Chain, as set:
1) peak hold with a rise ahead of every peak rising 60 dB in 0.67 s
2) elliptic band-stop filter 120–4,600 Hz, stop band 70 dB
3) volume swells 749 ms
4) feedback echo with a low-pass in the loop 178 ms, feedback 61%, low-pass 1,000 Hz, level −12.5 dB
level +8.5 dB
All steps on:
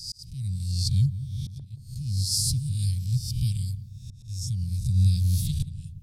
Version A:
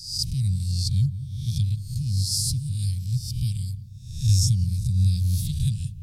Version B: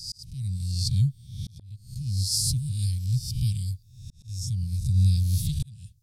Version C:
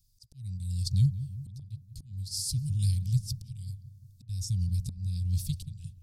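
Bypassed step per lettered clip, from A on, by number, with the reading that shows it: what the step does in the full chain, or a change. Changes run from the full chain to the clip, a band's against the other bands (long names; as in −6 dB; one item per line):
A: 3, change in momentary loudness spread −7 LU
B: 4, echo-to-direct ratio −16.0 dB to none audible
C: 1, 4 kHz band −3.5 dB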